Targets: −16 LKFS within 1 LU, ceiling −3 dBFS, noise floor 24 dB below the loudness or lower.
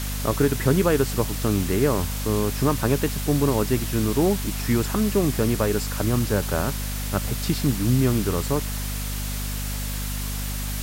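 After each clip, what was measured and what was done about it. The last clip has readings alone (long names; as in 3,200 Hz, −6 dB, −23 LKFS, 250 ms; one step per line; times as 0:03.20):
mains hum 50 Hz; hum harmonics up to 250 Hz; level of the hum −27 dBFS; background noise floor −28 dBFS; target noise floor −48 dBFS; integrated loudness −23.5 LKFS; sample peak −7.5 dBFS; target loudness −16.0 LKFS
→ hum removal 50 Hz, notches 5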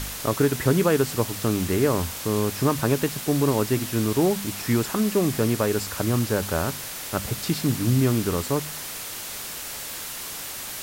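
mains hum none found; background noise floor −35 dBFS; target noise floor −49 dBFS
→ broadband denoise 14 dB, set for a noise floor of −35 dBFS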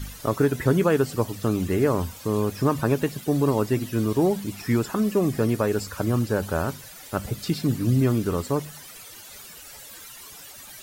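background noise floor −44 dBFS; target noise floor −49 dBFS
→ broadband denoise 6 dB, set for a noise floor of −44 dBFS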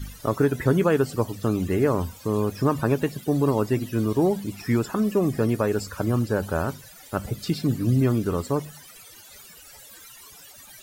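background noise floor −47 dBFS; target noise floor −49 dBFS
→ broadband denoise 6 dB, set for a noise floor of −47 dBFS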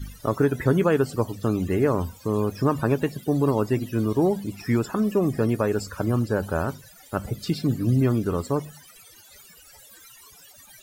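background noise floor −50 dBFS; integrated loudness −24.5 LKFS; sample peak −9.0 dBFS; target loudness −16.0 LKFS
→ level +8.5 dB
brickwall limiter −3 dBFS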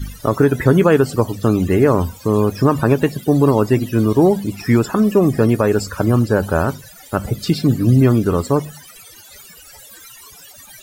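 integrated loudness −16.0 LKFS; sample peak −3.0 dBFS; background noise floor −42 dBFS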